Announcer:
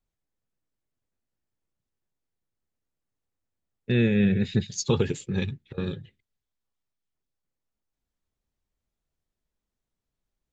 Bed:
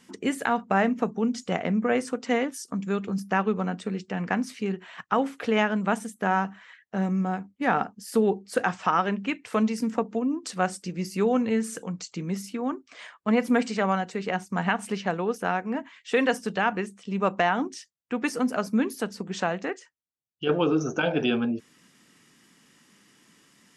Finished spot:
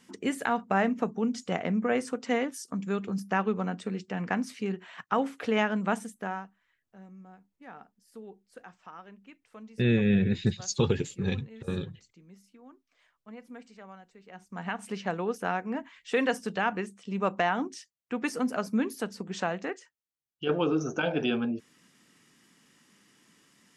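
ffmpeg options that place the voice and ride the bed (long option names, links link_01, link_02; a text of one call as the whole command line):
ffmpeg -i stem1.wav -i stem2.wav -filter_complex "[0:a]adelay=5900,volume=-2dB[link_01];[1:a]volume=17dB,afade=type=out:start_time=5.96:duration=0.55:silence=0.0944061,afade=type=in:start_time=14.28:duration=0.87:silence=0.1[link_02];[link_01][link_02]amix=inputs=2:normalize=0" out.wav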